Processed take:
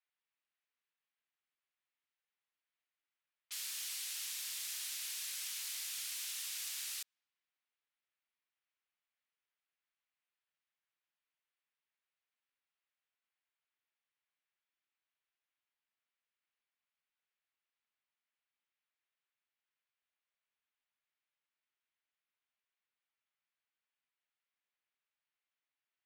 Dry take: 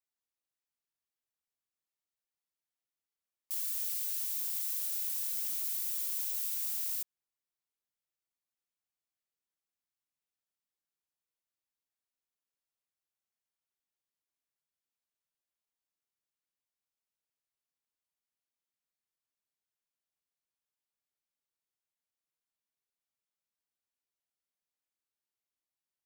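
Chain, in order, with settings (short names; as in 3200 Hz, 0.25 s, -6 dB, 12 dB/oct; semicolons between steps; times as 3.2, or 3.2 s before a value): band-pass 2600 Hz, Q 0.81; low-pass opened by the level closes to 2800 Hz, open at -51.5 dBFS; gain +8 dB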